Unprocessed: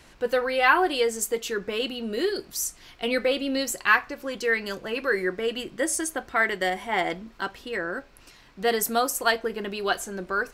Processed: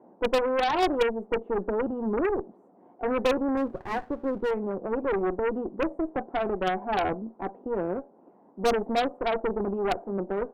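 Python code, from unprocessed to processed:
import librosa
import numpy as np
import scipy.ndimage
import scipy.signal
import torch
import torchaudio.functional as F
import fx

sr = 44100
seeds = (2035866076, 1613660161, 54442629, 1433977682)

y = scipy.signal.sosfilt(scipy.signal.ellip(3, 1.0, 70, [200.0, 830.0], 'bandpass', fs=sr, output='sos'), x)
y = fx.cheby_harmonics(y, sr, harmonics=(2, 3, 5, 6), levels_db=(-14, -17, -12, -16), full_scale_db=-17.5)
y = fx.running_max(y, sr, window=17, at=(3.57, 4.51))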